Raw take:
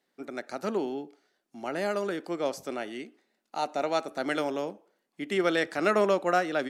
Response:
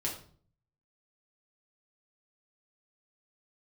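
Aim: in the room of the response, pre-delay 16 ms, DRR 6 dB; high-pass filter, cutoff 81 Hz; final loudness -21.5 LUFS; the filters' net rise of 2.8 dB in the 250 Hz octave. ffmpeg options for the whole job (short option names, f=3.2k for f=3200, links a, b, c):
-filter_complex "[0:a]highpass=81,equalizer=f=250:t=o:g=4,asplit=2[a][b];[1:a]atrim=start_sample=2205,adelay=16[c];[b][c]afir=irnorm=-1:irlink=0,volume=-9dB[d];[a][d]amix=inputs=2:normalize=0,volume=6.5dB"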